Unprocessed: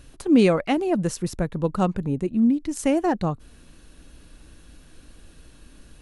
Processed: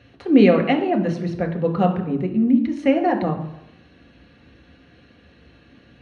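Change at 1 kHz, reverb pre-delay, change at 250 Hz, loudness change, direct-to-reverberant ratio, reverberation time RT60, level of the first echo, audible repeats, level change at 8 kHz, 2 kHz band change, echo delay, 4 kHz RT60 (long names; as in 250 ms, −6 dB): +4.5 dB, 3 ms, +3.0 dB, +3.0 dB, 3.0 dB, 0.85 s, no echo audible, no echo audible, below −15 dB, +4.5 dB, no echo audible, 0.65 s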